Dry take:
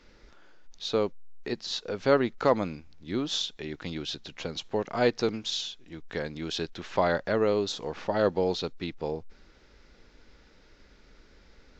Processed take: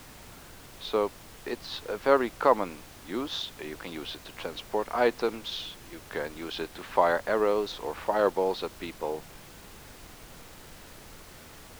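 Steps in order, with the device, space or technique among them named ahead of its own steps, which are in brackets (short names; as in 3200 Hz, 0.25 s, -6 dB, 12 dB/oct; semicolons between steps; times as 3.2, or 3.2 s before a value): horn gramophone (BPF 300–3400 Hz; bell 1000 Hz +6 dB; wow and flutter; pink noise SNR 17 dB)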